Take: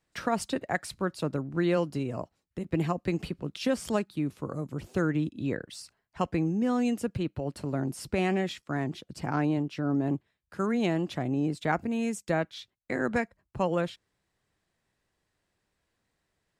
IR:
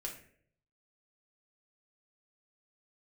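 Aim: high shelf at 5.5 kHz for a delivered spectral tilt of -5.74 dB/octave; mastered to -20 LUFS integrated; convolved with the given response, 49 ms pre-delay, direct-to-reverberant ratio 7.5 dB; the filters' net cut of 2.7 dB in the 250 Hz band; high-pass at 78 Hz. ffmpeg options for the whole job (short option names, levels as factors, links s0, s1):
-filter_complex "[0:a]highpass=78,equalizer=f=250:t=o:g=-3.5,highshelf=f=5500:g=-4.5,asplit=2[s0][s1];[1:a]atrim=start_sample=2205,adelay=49[s2];[s1][s2]afir=irnorm=-1:irlink=0,volume=0.501[s3];[s0][s3]amix=inputs=2:normalize=0,volume=3.76"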